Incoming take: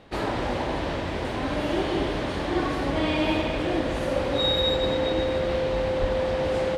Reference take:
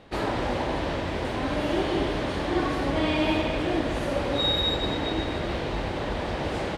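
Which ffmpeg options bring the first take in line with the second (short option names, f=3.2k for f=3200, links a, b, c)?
-filter_complex "[0:a]bandreject=f=520:w=30,asplit=3[a][b][c];[a]afade=t=out:st=6:d=0.02[d];[b]highpass=f=140:w=0.5412,highpass=f=140:w=1.3066,afade=t=in:st=6:d=0.02,afade=t=out:st=6.12:d=0.02[e];[c]afade=t=in:st=6.12:d=0.02[f];[d][e][f]amix=inputs=3:normalize=0"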